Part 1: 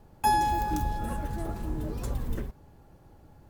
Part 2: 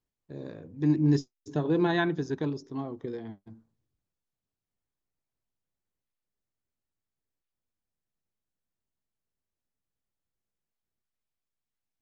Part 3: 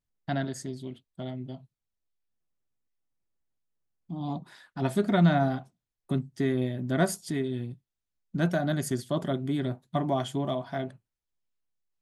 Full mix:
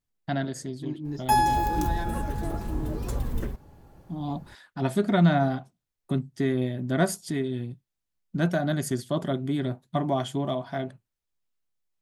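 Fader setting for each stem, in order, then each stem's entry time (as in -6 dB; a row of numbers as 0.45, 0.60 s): +2.5, -11.0, +1.5 dB; 1.05, 0.00, 0.00 s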